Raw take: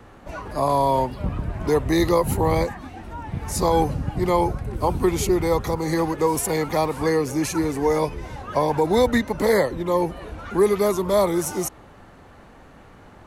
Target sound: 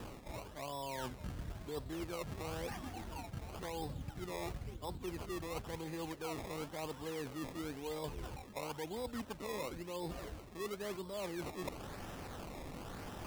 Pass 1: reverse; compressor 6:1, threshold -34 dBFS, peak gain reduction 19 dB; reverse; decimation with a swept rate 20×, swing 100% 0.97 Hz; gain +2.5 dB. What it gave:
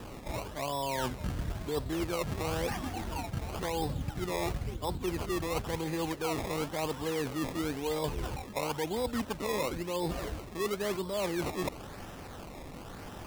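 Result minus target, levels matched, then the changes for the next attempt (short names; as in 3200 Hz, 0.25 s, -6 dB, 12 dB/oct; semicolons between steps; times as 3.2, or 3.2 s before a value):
compressor: peak gain reduction -9 dB
change: compressor 6:1, threshold -45 dBFS, peak gain reduction 28.5 dB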